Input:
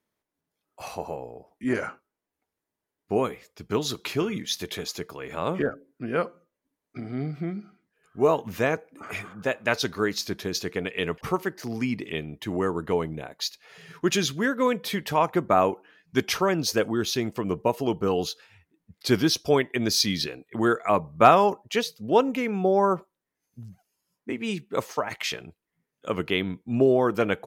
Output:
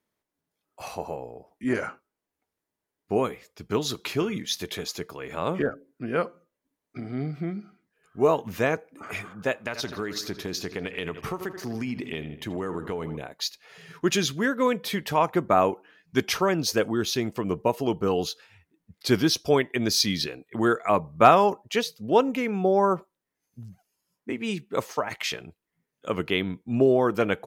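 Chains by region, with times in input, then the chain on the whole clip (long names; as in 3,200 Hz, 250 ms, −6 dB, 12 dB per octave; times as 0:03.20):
0:09.61–0:13.17: feedback echo with a low-pass in the loop 80 ms, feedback 63%, low-pass 4,400 Hz, level −15 dB + downward compressor, threshold −26 dBFS
whole clip: no processing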